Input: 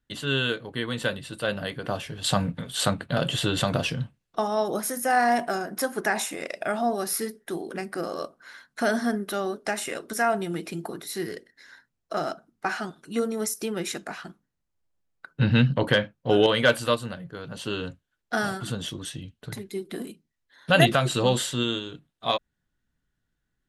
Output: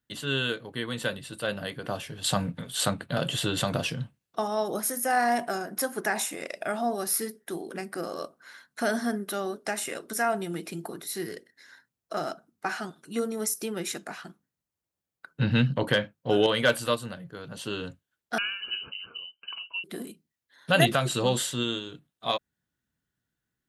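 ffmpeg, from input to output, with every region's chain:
ffmpeg -i in.wav -filter_complex "[0:a]asettb=1/sr,asplit=3[link_01][link_02][link_03];[link_01]atrim=end=18.384[link_04];[link_02]atrim=start=18.38:end=19.84,asetpts=PTS-STARTPTS,afade=type=in:duration=0.004:curve=qsin,afade=type=out:start_time=1.456:duration=0.004:curve=qsin,lowpass=frequency=2600:width_type=q:width=0.5098,lowpass=frequency=2600:width_type=q:width=0.6013,lowpass=frequency=2600:width_type=q:width=0.9,lowpass=frequency=2600:width_type=q:width=2.563,afreqshift=-3100,asuperstop=centerf=1900:order=4:qfactor=4.6[link_05];[link_03]atrim=start=19.836[link_06];[link_04][link_05]acrossfade=duration=0.004:curve1=hsin:curve2=qsin[link_07];[link_07][link_06]acrossfade=duration=0.004:curve1=qsin:curve2=hsin,highpass=80,highshelf=frequency=9100:gain=8,volume=-3dB" out.wav

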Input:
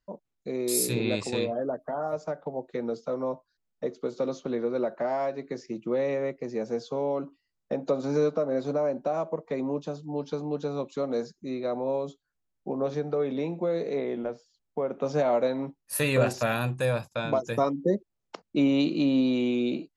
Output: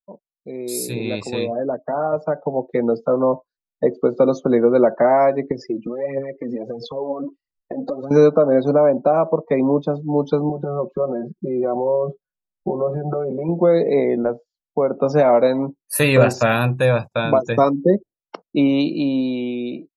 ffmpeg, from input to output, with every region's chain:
ffmpeg -i in.wav -filter_complex "[0:a]asettb=1/sr,asplit=3[link_01][link_02][link_03];[link_01]atrim=end=5.514[link_04];[link_02]atrim=start=5.51:end=8.11,asetpts=PTS-STARTPTS,afade=type=in:duration=0.004:curve=qsin,afade=type=out:start_time=2.596:duration=0.004:curve=qsin,acompressor=threshold=-37dB:ratio=8:attack=3.2:release=140:knee=1:detection=peak,aphaser=in_gain=1:out_gain=1:delay=4.5:decay=0.61:speed=1.5:type=triangular[link_05];[link_03]atrim=start=8.106[link_06];[link_04][link_05]acrossfade=duration=0.004:curve1=hsin:curve2=qsin[link_07];[link_07][link_06]acrossfade=duration=0.004:curve1=qsin:curve2=hsin,asettb=1/sr,asplit=3[link_08][link_09][link_10];[link_08]atrim=end=10.494[link_11];[link_09]atrim=start=10.49:end=13.49,asetpts=PTS-STARTPTS,afade=type=in:duration=0.004:curve=qsin,afade=type=out:start_time=2.996:duration=0.004:curve=qsin,lowpass=1800,acompressor=threshold=-35dB:ratio=4:attack=3.2:release=140:knee=1:detection=peak,aecho=1:1:5.4:0.88,atrim=end_sample=132300[link_12];[link_10]atrim=start=13.486[link_13];[link_11][link_12]acrossfade=duration=0.004:curve1=hsin:curve2=qsin[link_14];[link_14][link_13]acrossfade=duration=0.004:curve1=qsin:curve2=hsin,highshelf=frequency=5000:gain=-2.5,afftdn=noise_reduction=27:noise_floor=-46,dynaudnorm=framelen=280:gausssize=13:maxgain=15dB" out.wav

